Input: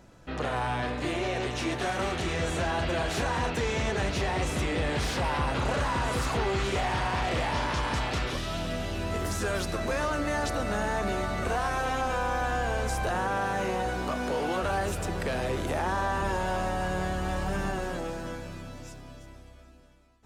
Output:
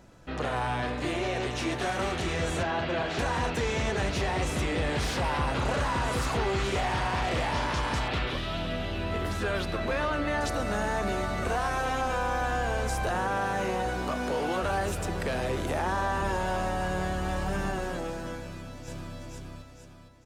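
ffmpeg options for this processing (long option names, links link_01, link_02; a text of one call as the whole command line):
ffmpeg -i in.wav -filter_complex "[0:a]asettb=1/sr,asplit=3[link_01][link_02][link_03];[link_01]atrim=end=2.634[link_04];[link_02]atrim=start=2.63:end=3.19,asetpts=PTS-STARTPTS,afade=type=in:duration=0.004:curve=qsin,afade=type=out:start_time=0.556:duration=0.004:curve=qsin,highpass=110,lowpass=4200[link_05];[link_03]atrim=start=3.186[link_06];[link_04][link_05]acrossfade=duration=0.004:curve1=hsin:curve2=qsin[link_07];[link_07][link_06]acrossfade=duration=0.004:curve1=qsin:curve2=hsin,asettb=1/sr,asplit=3[link_08][link_09][link_10];[link_08]atrim=end=8.084[link_11];[link_09]atrim=start=8.08:end=10.41,asetpts=PTS-STARTPTS,afade=type=in:duration=0.004:curve=qsin,afade=type=out:start_time=2.326:duration=0.004:curve=qsin,highshelf=frequency=4700:width_type=q:width=1.5:gain=-8[link_12];[link_10]atrim=start=10.406[link_13];[link_11][link_12]acrossfade=duration=0.004:curve1=hsin:curve2=qsin[link_14];[link_14][link_13]acrossfade=duration=0.004:curve1=qsin:curve2=hsin,asplit=2[link_15][link_16];[link_16]afade=type=in:start_time=18.41:duration=0.01,afade=type=out:start_time=19.16:duration=0.01,aecho=0:1:460|920|1380|1840|2300|2760:0.891251|0.401063|0.180478|0.0812152|0.0365469|0.0164461[link_17];[link_15][link_17]amix=inputs=2:normalize=0" out.wav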